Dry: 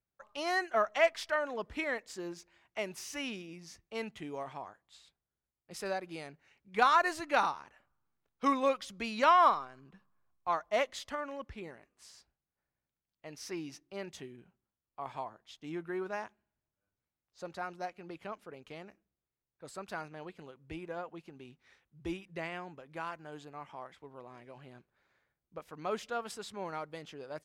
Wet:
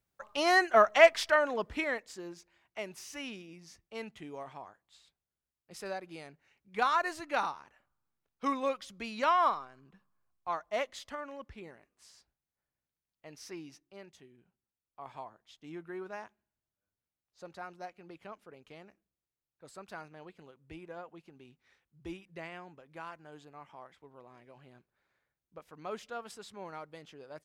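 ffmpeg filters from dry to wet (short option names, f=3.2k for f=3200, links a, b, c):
-af "volume=14dB,afade=t=out:st=1.19:d=1.03:silence=0.316228,afade=t=out:st=13.35:d=0.84:silence=0.375837,afade=t=in:st=14.19:d=0.97:silence=0.446684"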